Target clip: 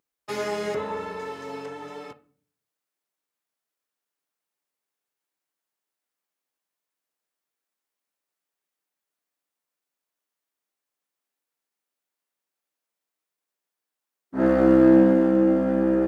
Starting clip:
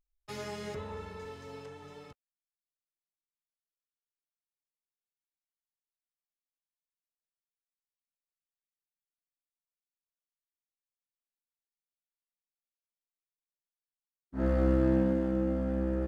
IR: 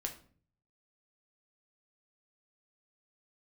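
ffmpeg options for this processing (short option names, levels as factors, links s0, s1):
-filter_complex "[0:a]highpass=240,asplit=2[s0][s1];[1:a]atrim=start_sample=2205,lowpass=2500[s2];[s1][s2]afir=irnorm=-1:irlink=0,volume=0.75[s3];[s0][s3]amix=inputs=2:normalize=0,volume=2.66"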